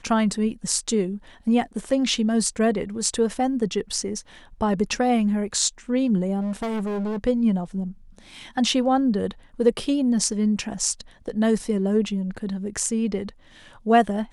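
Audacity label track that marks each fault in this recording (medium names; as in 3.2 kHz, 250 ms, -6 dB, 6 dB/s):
6.400000	7.180000	clipped -24 dBFS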